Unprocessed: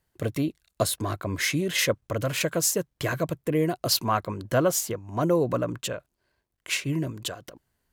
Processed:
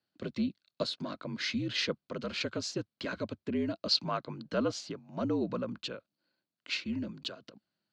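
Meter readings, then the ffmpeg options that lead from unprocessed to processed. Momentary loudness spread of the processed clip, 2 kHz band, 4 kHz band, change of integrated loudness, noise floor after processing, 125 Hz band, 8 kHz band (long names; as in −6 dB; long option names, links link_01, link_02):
11 LU, −8.5 dB, −3.5 dB, −8.0 dB, below −85 dBFS, −12.5 dB, −18.5 dB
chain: -af "afreqshift=-59,highpass=frequency=130:width=0.5412,highpass=frequency=130:width=1.3066,equalizer=frequency=210:width_type=q:width=4:gain=4,equalizer=frequency=440:width_type=q:width=4:gain=-6,equalizer=frequency=930:width_type=q:width=4:gain=-8,equalizer=frequency=1900:width_type=q:width=4:gain=-6,equalizer=frequency=4400:width_type=q:width=4:gain=8,lowpass=frequency=4800:width=0.5412,lowpass=frequency=4800:width=1.3066,volume=-6dB"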